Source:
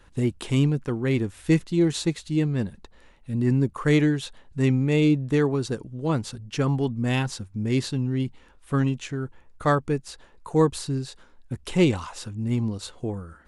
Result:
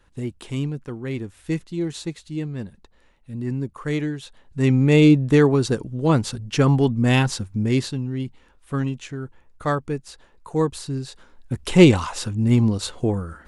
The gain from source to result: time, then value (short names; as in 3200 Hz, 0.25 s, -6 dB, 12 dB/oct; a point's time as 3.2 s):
4.25 s -5 dB
4.86 s +6.5 dB
7.55 s +6.5 dB
8.03 s -1.5 dB
10.79 s -1.5 dB
11.82 s +8 dB